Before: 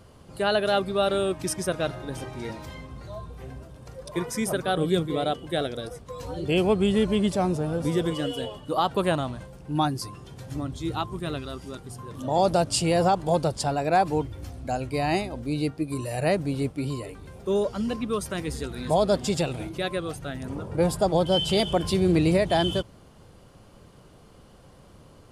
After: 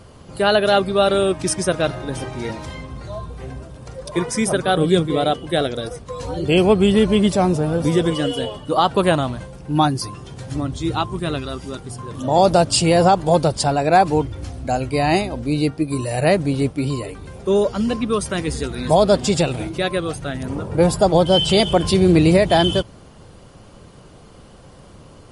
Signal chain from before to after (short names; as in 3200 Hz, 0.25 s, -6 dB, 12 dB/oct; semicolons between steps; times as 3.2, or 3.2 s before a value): gain +8 dB; MP3 48 kbps 48000 Hz